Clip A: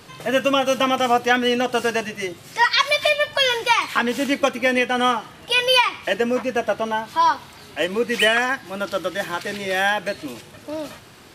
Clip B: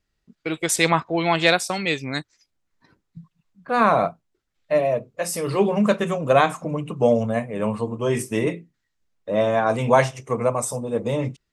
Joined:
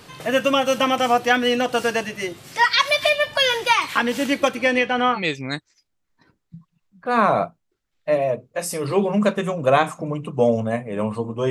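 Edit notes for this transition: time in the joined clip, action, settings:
clip A
4.54–5.21 s: low-pass 12 kHz -> 1.8 kHz
5.17 s: go over to clip B from 1.80 s, crossfade 0.08 s

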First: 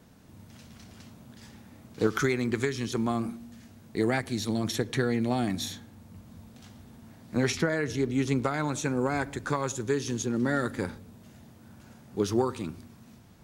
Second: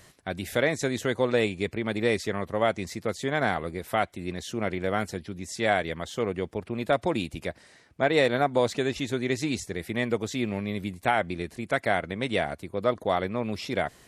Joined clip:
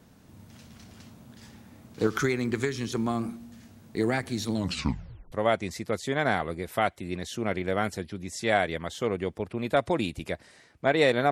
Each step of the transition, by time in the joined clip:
first
4.54 s: tape stop 0.78 s
5.32 s: go over to second from 2.48 s

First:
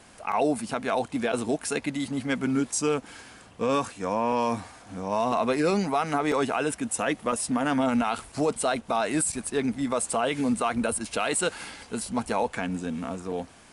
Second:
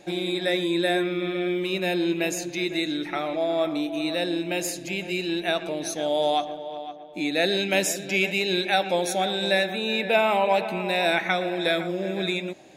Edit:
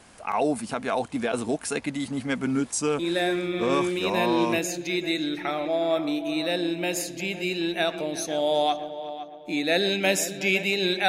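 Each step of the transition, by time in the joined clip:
first
3.79 s: go over to second from 1.47 s, crossfade 1.60 s logarithmic

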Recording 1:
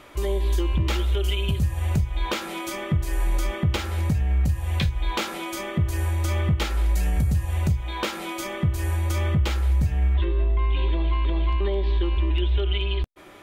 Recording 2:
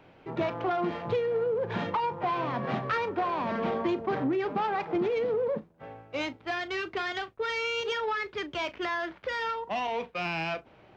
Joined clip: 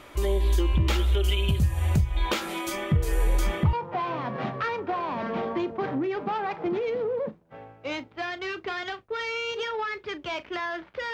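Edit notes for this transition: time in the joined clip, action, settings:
recording 1
2.95 s: add recording 2 from 1.24 s 0.78 s -9 dB
3.73 s: go over to recording 2 from 2.02 s

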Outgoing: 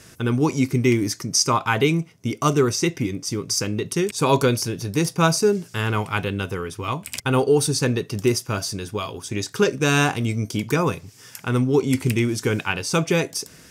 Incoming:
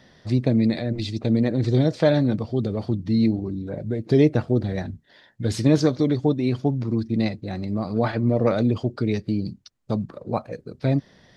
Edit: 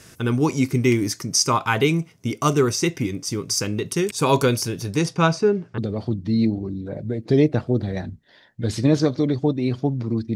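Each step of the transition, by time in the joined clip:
outgoing
4.91–5.78 s: low-pass 10 kHz -> 1.2 kHz
5.78 s: go over to incoming from 2.59 s

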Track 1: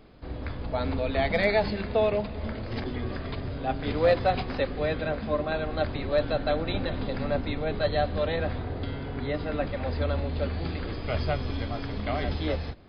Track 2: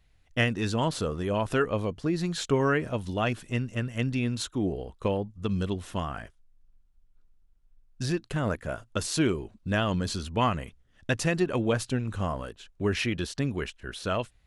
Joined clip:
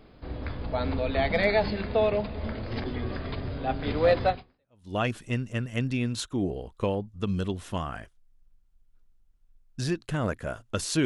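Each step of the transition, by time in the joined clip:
track 1
4.62 s: go over to track 2 from 2.84 s, crossfade 0.66 s exponential

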